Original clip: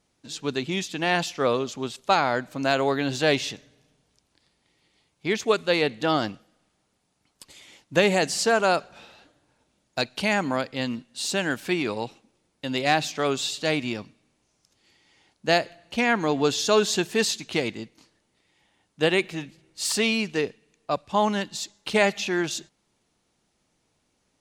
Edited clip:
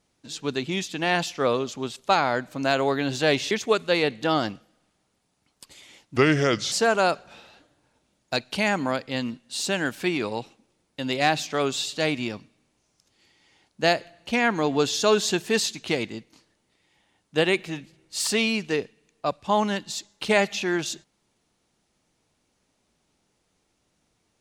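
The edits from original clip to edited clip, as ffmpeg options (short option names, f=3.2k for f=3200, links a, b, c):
-filter_complex "[0:a]asplit=4[a][b][c][d];[a]atrim=end=3.512[e];[b]atrim=start=5.298:end=7.954[f];[c]atrim=start=7.95:end=8.37,asetpts=PTS-STARTPTS,asetrate=33075,aresample=44100[g];[d]atrim=start=8.366[h];[e][f]acrossfade=d=0.004:c1=hsin:c2=hsin[i];[i][g]acrossfade=d=0.004:c1=hsin:c2=hsin[j];[j][h]acrossfade=d=0.004:c1=hsin:c2=hsin"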